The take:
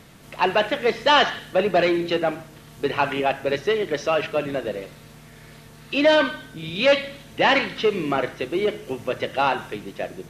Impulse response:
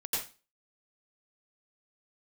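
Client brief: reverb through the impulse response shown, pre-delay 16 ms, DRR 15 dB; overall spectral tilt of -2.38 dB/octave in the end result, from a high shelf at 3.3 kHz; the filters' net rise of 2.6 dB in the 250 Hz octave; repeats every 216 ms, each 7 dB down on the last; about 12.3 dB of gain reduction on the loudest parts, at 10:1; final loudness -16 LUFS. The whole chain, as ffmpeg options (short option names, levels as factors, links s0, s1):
-filter_complex "[0:a]equalizer=f=250:t=o:g=3.5,highshelf=f=3300:g=7,acompressor=threshold=0.0631:ratio=10,aecho=1:1:216|432|648|864|1080:0.447|0.201|0.0905|0.0407|0.0183,asplit=2[s0][s1];[1:a]atrim=start_sample=2205,adelay=16[s2];[s1][s2]afir=irnorm=-1:irlink=0,volume=0.106[s3];[s0][s3]amix=inputs=2:normalize=0,volume=3.98"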